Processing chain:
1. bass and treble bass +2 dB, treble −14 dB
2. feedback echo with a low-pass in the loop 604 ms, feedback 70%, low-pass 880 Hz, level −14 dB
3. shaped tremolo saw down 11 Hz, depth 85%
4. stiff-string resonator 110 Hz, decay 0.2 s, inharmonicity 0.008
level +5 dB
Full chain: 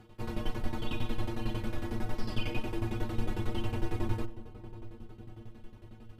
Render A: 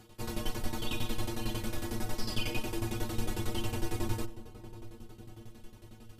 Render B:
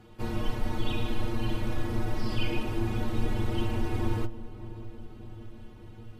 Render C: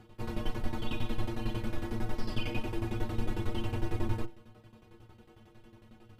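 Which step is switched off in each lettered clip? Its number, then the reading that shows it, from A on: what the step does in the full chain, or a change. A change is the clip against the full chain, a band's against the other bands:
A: 1, 4 kHz band +5.5 dB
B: 3, change in integrated loudness +4.0 LU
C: 2, change in momentary loudness spread −12 LU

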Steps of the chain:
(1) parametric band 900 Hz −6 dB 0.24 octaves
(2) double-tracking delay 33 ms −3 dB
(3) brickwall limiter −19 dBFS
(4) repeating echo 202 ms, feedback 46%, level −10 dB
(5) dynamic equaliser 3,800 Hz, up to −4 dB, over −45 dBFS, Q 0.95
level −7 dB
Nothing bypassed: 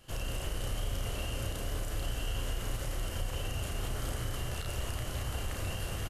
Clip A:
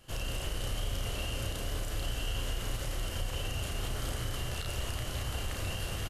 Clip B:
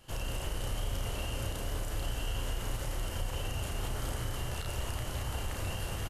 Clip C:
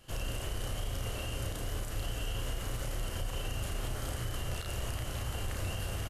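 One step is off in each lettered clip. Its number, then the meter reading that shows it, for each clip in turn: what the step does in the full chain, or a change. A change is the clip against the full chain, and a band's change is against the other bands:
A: 5, 4 kHz band +3.0 dB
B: 1, 1 kHz band +1.5 dB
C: 4, change in crest factor −1.5 dB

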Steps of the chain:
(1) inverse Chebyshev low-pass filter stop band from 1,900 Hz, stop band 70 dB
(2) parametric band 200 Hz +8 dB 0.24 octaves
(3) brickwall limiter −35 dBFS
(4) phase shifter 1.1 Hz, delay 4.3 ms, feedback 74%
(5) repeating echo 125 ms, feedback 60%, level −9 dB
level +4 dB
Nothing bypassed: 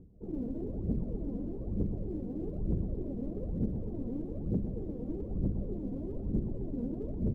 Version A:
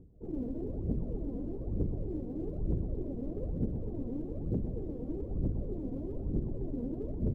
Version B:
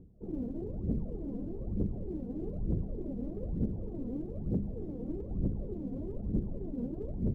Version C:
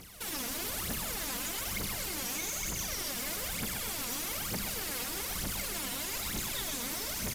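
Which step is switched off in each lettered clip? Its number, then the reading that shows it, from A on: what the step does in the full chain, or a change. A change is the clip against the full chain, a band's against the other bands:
2, 250 Hz band −2.0 dB
5, echo-to-direct ratio −7.0 dB to none audible
1, 1 kHz band +26.0 dB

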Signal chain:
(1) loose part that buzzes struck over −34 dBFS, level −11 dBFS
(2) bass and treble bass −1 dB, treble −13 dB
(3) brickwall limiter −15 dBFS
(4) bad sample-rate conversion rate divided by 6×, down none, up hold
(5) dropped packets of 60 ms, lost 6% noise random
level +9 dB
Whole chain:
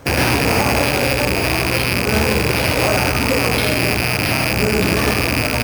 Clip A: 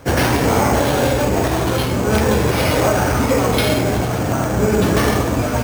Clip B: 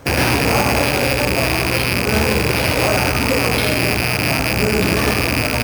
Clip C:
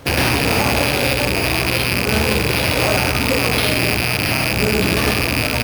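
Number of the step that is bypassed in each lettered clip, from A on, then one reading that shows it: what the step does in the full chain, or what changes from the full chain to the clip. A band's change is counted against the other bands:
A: 1, 2 kHz band −7.5 dB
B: 5, change in crest factor −2.0 dB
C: 2, 4 kHz band +2.5 dB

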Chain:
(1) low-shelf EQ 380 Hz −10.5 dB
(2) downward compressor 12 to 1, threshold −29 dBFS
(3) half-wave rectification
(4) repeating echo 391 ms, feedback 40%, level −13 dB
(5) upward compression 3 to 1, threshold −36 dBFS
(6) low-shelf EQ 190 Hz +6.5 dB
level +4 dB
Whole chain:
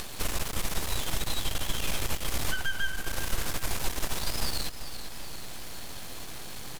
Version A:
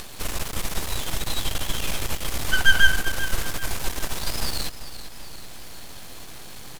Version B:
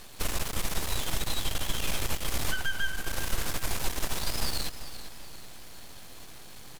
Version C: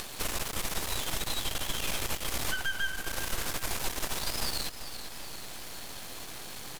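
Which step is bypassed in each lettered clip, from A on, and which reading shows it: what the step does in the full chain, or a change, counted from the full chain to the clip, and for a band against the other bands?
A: 2, average gain reduction 2.5 dB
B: 5, change in momentary loudness spread +6 LU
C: 6, 125 Hz band −5.0 dB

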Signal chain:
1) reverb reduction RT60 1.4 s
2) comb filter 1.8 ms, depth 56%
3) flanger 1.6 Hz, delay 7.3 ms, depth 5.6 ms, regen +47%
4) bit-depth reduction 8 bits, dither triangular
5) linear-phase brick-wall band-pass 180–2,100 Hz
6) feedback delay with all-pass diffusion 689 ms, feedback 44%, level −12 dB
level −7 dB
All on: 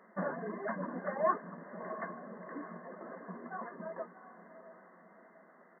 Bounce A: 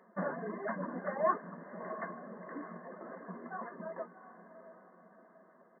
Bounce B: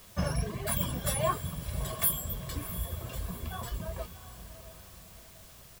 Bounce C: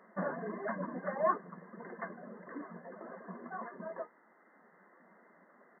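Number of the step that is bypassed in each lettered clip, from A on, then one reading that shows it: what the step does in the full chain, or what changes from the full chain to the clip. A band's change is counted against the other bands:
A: 4, distortion level −20 dB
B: 5, 125 Hz band +15.5 dB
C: 6, echo-to-direct ratio −11.0 dB to none audible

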